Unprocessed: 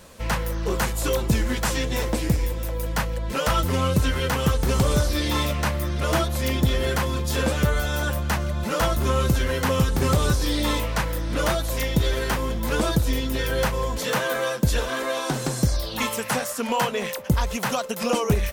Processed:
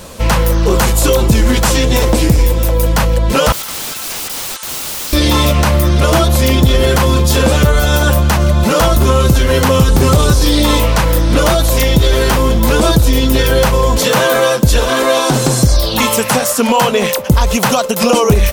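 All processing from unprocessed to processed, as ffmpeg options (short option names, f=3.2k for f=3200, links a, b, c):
-filter_complex "[0:a]asettb=1/sr,asplit=3[a][b][c];[a]atrim=end=3.524[d];[b]atrim=start=3.52:end=5.13,asetpts=PTS-STARTPTS,afade=t=in:d=0.004:c=qsin,afade=t=out:st=1.606:d=0.004:c=qsin,highpass=f=1.2k:w=0.5412,highpass=f=1.2k:w=1.3066,highshelf=f=7.8k:g=-5.5,aeval=exprs='(mod(42.2*val(0)+1,2)-1)/42.2':c=same[e];[c]atrim=start=5.126[f];[d][e]acrossfade=d=0.004:c1=hsin:c2=qsin[g];[g][f]acrossfade=d=0.004:c1=qsin:c2=hsin,equalizer=f=1.8k:w=1.9:g=-4.5,alimiter=level_in=16.5dB:limit=-1dB:release=50:level=0:latency=1,volume=-1dB"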